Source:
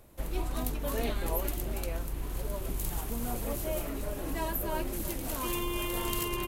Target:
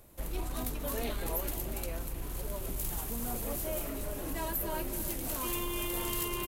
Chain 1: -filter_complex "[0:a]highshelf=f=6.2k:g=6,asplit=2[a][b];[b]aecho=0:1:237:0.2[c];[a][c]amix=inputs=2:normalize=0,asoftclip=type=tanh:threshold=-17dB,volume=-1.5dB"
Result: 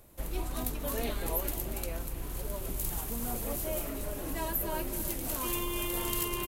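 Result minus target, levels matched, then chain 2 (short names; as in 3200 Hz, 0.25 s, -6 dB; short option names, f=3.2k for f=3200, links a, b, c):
soft clip: distortion -10 dB
-filter_complex "[0:a]highshelf=f=6.2k:g=6,asplit=2[a][b];[b]aecho=0:1:237:0.2[c];[a][c]amix=inputs=2:normalize=0,asoftclip=type=tanh:threshold=-25dB,volume=-1.5dB"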